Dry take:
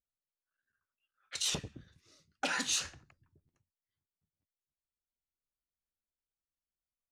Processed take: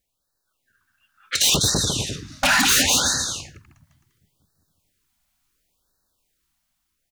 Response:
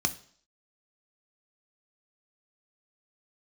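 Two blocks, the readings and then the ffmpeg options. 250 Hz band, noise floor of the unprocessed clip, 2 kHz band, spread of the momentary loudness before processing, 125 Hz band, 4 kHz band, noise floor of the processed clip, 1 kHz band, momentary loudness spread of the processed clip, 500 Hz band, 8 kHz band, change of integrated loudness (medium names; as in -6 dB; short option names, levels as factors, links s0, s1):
+18.5 dB, under -85 dBFS, +17.5 dB, 14 LU, +21.0 dB, +18.0 dB, -77 dBFS, +17.5 dB, 12 LU, +17.0 dB, +18.0 dB, +16.0 dB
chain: -filter_complex "[0:a]dynaudnorm=f=520:g=5:m=1.68,asplit=2[s0][s1];[s1]alimiter=level_in=1.33:limit=0.0631:level=0:latency=1:release=71,volume=0.75,volume=1.12[s2];[s0][s2]amix=inputs=2:normalize=0,acontrast=71,asplit=2[s3][s4];[s4]aecho=0:1:200|350|462.5|546.9|610.2:0.631|0.398|0.251|0.158|0.1[s5];[s3][s5]amix=inputs=2:normalize=0,aeval=exprs='0.168*(abs(mod(val(0)/0.168+3,4)-2)-1)':c=same,afftfilt=real='re*(1-between(b*sr/1024,390*pow(2700/390,0.5+0.5*sin(2*PI*0.71*pts/sr))/1.41,390*pow(2700/390,0.5+0.5*sin(2*PI*0.71*pts/sr))*1.41))':imag='im*(1-between(b*sr/1024,390*pow(2700/390,0.5+0.5*sin(2*PI*0.71*pts/sr))/1.41,390*pow(2700/390,0.5+0.5*sin(2*PI*0.71*pts/sr))*1.41))':win_size=1024:overlap=0.75,volume=1.58"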